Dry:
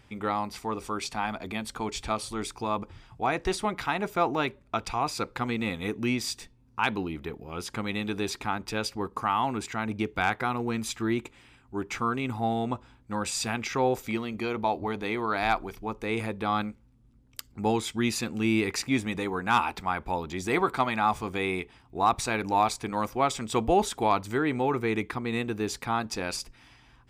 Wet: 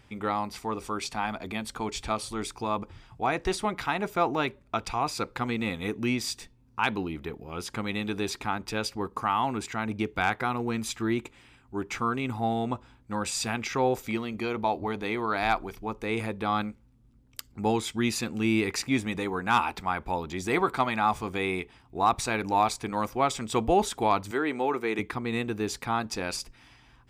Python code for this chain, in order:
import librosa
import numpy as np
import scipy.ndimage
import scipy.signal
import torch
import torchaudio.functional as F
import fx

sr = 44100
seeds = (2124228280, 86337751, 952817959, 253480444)

y = fx.highpass(x, sr, hz=280.0, slope=12, at=(24.31, 24.99))